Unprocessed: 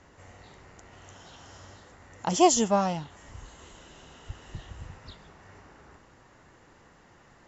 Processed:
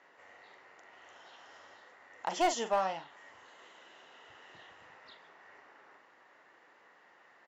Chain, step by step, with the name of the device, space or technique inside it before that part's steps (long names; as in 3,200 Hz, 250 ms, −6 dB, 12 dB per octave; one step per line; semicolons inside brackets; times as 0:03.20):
megaphone (band-pass filter 510–3,800 Hz; parametric band 1,900 Hz +5 dB 0.27 octaves; hard clipping −18.5 dBFS, distortion −12 dB; double-tracking delay 42 ms −11 dB)
level −3.5 dB